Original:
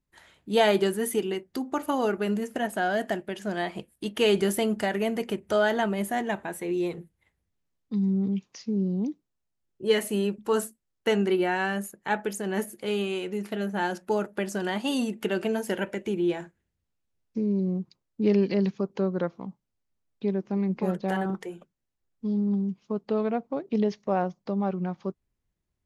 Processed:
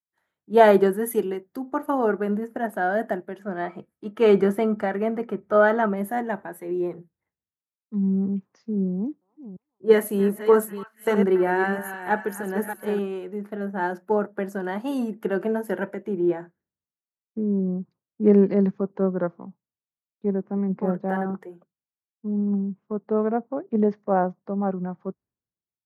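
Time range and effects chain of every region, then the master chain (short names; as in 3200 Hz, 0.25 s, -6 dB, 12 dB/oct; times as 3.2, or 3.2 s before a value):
3.42–5.97 air absorption 50 m + small resonant body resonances 1300/2300 Hz, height 14 dB, ringing for 95 ms
8.93–12.99 reverse delay 0.317 s, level -7 dB + high shelf 5300 Hz +2.5 dB + delay with a stepping band-pass 0.285 s, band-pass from 1300 Hz, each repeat 0.7 oct, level -8.5 dB
whole clip: HPF 120 Hz; band shelf 4800 Hz -15 dB 2.4 oct; three-band expander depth 70%; gain +3 dB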